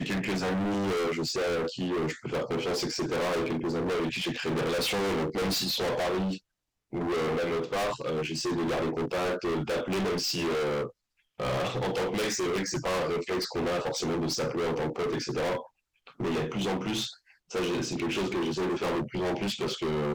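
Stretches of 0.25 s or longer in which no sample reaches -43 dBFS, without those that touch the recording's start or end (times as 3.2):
6.38–6.93
10.9–11.39
15.66–16.07
17.14–17.5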